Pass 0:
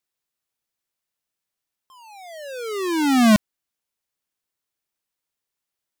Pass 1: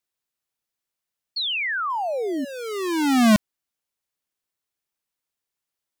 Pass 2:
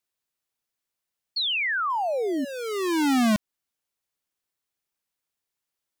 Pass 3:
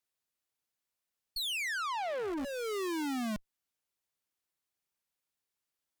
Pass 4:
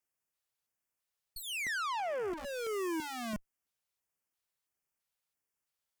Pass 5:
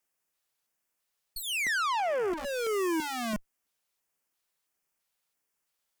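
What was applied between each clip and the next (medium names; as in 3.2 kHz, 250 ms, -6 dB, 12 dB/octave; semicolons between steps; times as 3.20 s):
painted sound fall, 1.36–2.45 s, 250–4500 Hz -24 dBFS; trim -1.5 dB
compression, threshold -21 dBFS, peak gain reduction 7 dB
valve stage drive 34 dB, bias 0.65
LFO notch square 1.5 Hz 280–3900 Hz
peaking EQ 87 Hz -12 dB 0.82 oct; trim +6.5 dB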